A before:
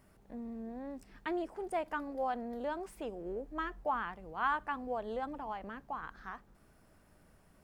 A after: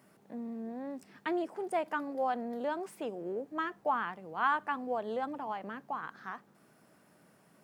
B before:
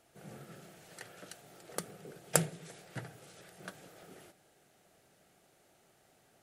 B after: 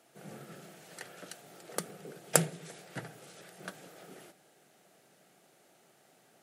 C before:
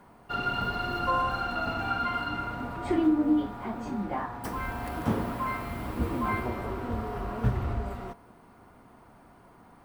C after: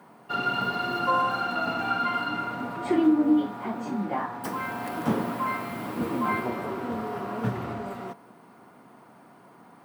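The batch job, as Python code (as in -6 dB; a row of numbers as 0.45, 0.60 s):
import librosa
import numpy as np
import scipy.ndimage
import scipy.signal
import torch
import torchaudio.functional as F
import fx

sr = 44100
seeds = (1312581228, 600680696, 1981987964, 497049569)

y = scipy.signal.sosfilt(scipy.signal.butter(4, 140.0, 'highpass', fs=sr, output='sos'), x)
y = F.gain(torch.from_numpy(y), 3.0).numpy()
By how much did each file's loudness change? +3.0, +3.0, +2.5 LU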